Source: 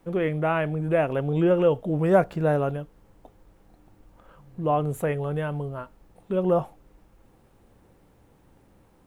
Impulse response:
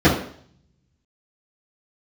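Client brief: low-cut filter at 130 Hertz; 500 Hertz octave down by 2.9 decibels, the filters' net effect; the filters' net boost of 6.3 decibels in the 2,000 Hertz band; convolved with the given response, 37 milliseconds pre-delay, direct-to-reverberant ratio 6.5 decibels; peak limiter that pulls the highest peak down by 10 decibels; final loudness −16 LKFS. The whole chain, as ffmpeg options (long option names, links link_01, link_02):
-filter_complex "[0:a]highpass=130,equalizer=frequency=500:width_type=o:gain=-4,equalizer=frequency=2000:width_type=o:gain=9,alimiter=limit=-17dB:level=0:latency=1,asplit=2[link_01][link_02];[1:a]atrim=start_sample=2205,adelay=37[link_03];[link_02][link_03]afir=irnorm=-1:irlink=0,volume=-30dB[link_04];[link_01][link_04]amix=inputs=2:normalize=0,volume=9dB"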